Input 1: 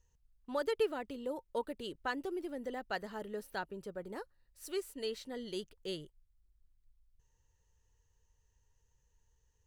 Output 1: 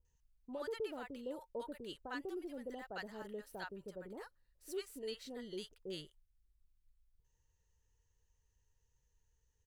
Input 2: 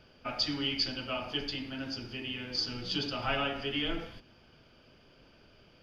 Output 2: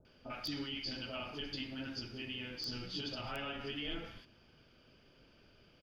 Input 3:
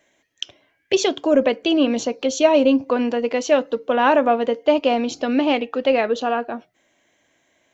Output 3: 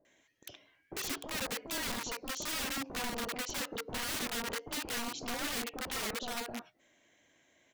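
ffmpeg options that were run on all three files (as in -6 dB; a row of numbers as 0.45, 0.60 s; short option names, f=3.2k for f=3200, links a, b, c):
-filter_complex "[0:a]aeval=exprs='(mod(7.94*val(0)+1,2)-1)/7.94':c=same,alimiter=level_in=3.5dB:limit=-24dB:level=0:latency=1:release=58,volume=-3.5dB,acrossover=split=820[a][b];[b]adelay=50[c];[a][c]amix=inputs=2:normalize=0,volume=-4dB"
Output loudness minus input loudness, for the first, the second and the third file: -6.0, -8.0, -17.5 LU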